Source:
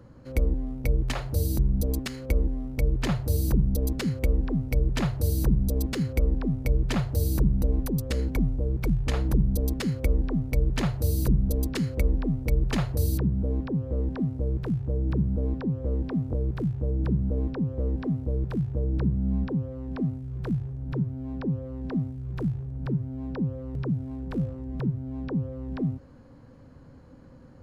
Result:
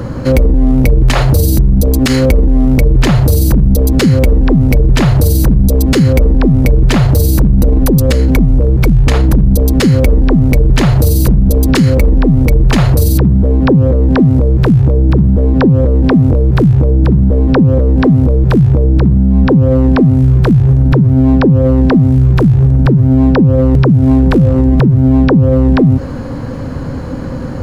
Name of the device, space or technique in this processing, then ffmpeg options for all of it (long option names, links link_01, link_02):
loud club master: -af "acompressor=threshold=-26dB:ratio=2.5,asoftclip=type=hard:threshold=-20.5dB,alimiter=level_in=31dB:limit=-1dB:release=50:level=0:latency=1,volume=-1dB"